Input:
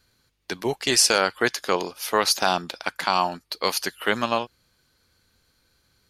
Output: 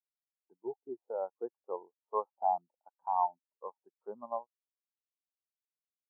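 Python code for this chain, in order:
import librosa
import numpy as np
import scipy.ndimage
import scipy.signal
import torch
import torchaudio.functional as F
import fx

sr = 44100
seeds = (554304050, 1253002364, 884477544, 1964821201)

y = fx.ladder_lowpass(x, sr, hz=1100.0, resonance_pct=45)
y = fx.spectral_expand(y, sr, expansion=2.5)
y = y * librosa.db_to_amplitude(-3.5)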